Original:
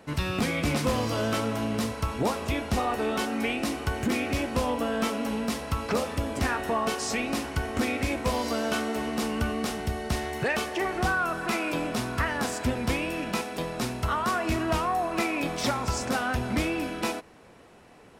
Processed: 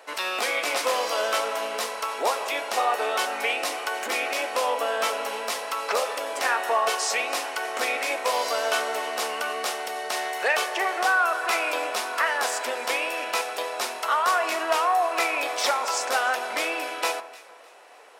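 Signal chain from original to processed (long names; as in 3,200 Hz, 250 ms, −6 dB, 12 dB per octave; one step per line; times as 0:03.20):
high-pass filter 510 Hz 24 dB per octave
delay that swaps between a low-pass and a high-pass 152 ms, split 1,600 Hz, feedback 54%, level −14 dB
level +5.5 dB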